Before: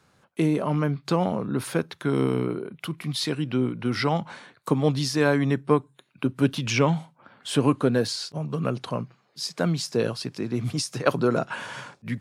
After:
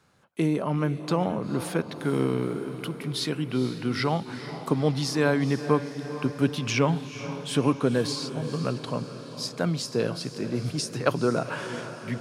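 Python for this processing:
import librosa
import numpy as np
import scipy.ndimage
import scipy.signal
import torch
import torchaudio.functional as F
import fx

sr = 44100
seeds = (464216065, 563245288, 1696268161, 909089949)

y = fx.echo_diffused(x, sr, ms=464, feedback_pct=59, wet_db=-11.5)
y = y * librosa.db_to_amplitude(-2.0)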